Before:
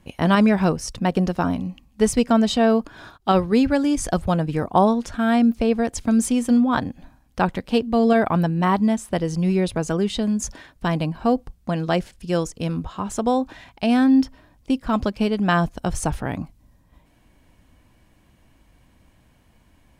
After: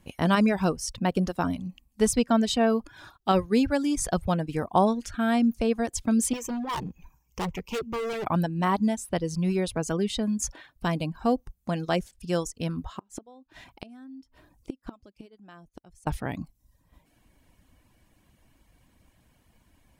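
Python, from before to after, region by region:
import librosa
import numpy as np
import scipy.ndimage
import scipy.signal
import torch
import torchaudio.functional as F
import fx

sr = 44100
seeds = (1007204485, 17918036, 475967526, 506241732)

y = fx.chain(x, sr, fx.ripple_eq(per_octave=0.76, db=13),
    fx.clip_hard(threshold_db=-23.0), at=(6.33, 8.27))
y = fx.chain(y, sr, fx.gate_flip(shuts_db=-18.0, range_db=-26),
    fx.peak_eq(hz=330.0, db=5.0, octaves=0.76), at=(12.96, 16.07))
y = fx.dereverb_blind(y, sr, rt60_s=0.59)
y = fx.high_shelf(y, sr, hz=6000.0, db=6.0)
y = F.gain(torch.from_numpy(y), -4.5).numpy()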